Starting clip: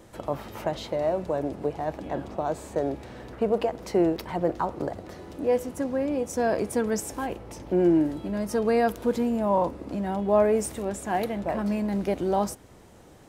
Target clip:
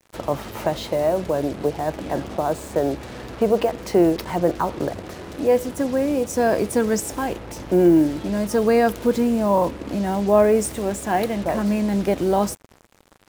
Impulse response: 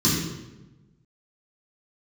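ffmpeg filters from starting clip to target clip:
-af "adynamicequalizer=threshold=0.0112:dfrequency=800:dqfactor=2.4:tfrequency=800:tqfactor=2.4:attack=5:release=100:ratio=0.375:range=2.5:mode=cutabove:tftype=bell,acrusher=bits=6:mix=0:aa=0.5,volume=6dB"

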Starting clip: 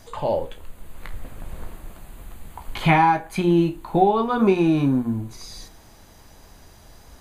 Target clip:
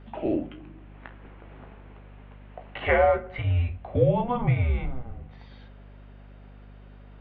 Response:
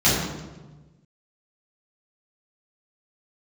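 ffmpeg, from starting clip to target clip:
-filter_complex "[0:a]highpass=frequency=310:width_type=q:width=0.5412,highpass=frequency=310:width_type=q:width=1.307,lowpass=frequency=3200:width_type=q:width=0.5176,lowpass=frequency=3200:width_type=q:width=0.7071,lowpass=frequency=3200:width_type=q:width=1.932,afreqshift=-250,asplit=2[link_01][link_02];[1:a]atrim=start_sample=2205[link_03];[link_02][link_03]afir=irnorm=-1:irlink=0,volume=-40dB[link_04];[link_01][link_04]amix=inputs=2:normalize=0,aeval=exprs='val(0)+0.00708*(sin(2*PI*50*n/s)+sin(2*PI*2*50*n/s)/2+sin(2*PI*3*50*n/s)/3+sin(2*PI*4*50*n/s)/4+sin(2*PI*5*50*n/s)/5)':channel_layout=same,volume=-3dB"

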